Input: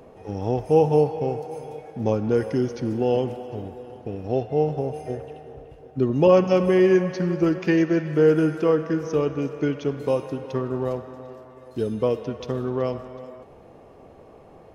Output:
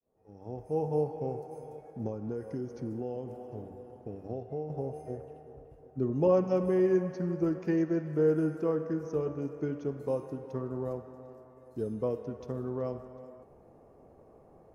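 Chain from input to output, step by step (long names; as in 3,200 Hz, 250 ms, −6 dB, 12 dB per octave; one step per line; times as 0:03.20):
fade in at the beginning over 1.26 s
0:02.06–0:04.70: downward compressor 6 to 1, threshold −24 dBFS, peak gain reduction 8.5 dB
parametric band 3,200 Hz −14.5 dB 1.6 octaves
hum removal 96.74 Hz, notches 36
level −8 dB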